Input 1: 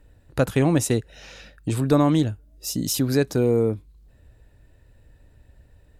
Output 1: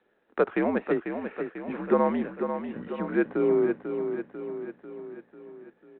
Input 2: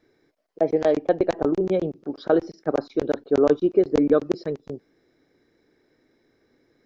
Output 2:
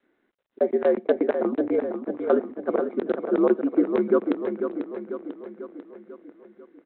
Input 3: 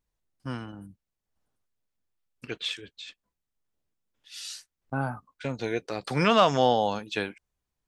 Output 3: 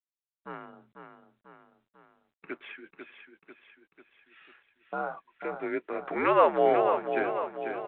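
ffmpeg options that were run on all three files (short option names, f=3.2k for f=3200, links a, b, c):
-af "aecho=1:1:494|988|1482|1976|2470|2964|3458:0.422|0.232|0.128|0.0702|0.0386|0.0212|0.0117,highpass=f=380:t=q:w=0.5412,highpass=f=380:t=q:w=1.307,lowpass=f=2.3k:t=q:w=0.5176,lowpass=f=2.3k:t=q:w=0.7071,lowpass=f=2.3k:t=q:w=1.932,afreqshift=-78" -ar 8000 -c:a adpcm_g726 -b:a 40k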